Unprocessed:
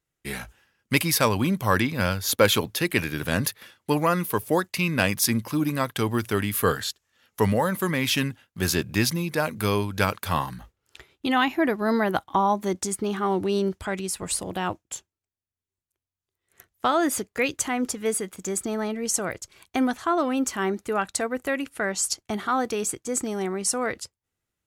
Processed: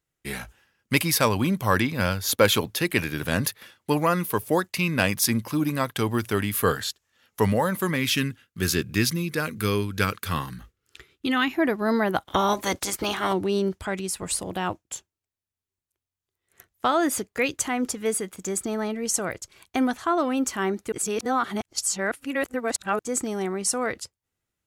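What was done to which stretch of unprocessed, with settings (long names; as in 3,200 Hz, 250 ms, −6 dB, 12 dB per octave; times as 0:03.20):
0:07.96–0:11.54: flat-topped bell 750 Hz −9 dB 1 octave
0:12.24–0:13.32: ceiling on every frequency bin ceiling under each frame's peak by 21 dB
0:20.92–0:22.99: reverse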